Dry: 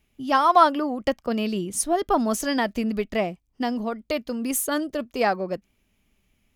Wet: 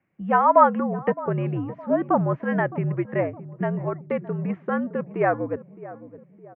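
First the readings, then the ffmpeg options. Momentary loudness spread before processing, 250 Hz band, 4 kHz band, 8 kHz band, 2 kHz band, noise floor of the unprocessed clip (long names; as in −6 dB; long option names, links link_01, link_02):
11 LU, −0.5 dB, below −20 dB, below −40 dB, −0.5 dB, −70 dBFS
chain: -filter_complex "[0:a]asplit=2[link_01][link_02];[link_02]adelay=614,lowpass=frequency=860:poles=1,volume=-15dB,asplit=2[link_03][link_04];[link_04]adelay=614,lowpass=frequency=860:poles=1,volume=0.52,asplit=2[link_05][link_06];[link_06]adelay=614,lowpass=frequency=860:poles=1,volume=0.52,asplit=2[link_07][link_08];[link_08]adelay=614,lowpass=frequency=860:poles=1,volume=0.52,asplit=2[link_09][link_10];[link_10]adelay=614,lowpass=frequency=860:poles=1,volume=0.52[link_11];[link_01][link_03][link_05][link_07][link_09][link_11]amix=inputs=6:normalize=0,highpass=frequency=190:width_type=q:width=0.5412,highpass=frequency=190:width_type=q:width=1.307,lowpass=frequency=2100:width_type=q:width=0.5176,lowpass=frequency=2100:width_type=q:width=0.7071,lowpass=frequency=2100:width_type=q:width=1.932,afreqshift=-69,volume=1dB"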